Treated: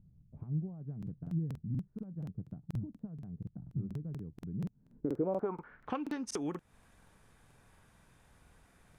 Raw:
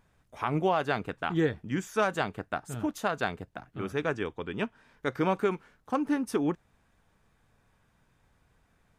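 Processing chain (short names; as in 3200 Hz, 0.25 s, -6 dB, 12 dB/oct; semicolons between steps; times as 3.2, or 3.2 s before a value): compressor 4:1, threshold -40 dBFS, peak gain reduction 15.5 dB; low-pass sweep 160 Hz -> 11000 Hz, 4.79–6.49; crackling interface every 0.24 s, samples 2048, repeat, from 0.98; gain +4 dB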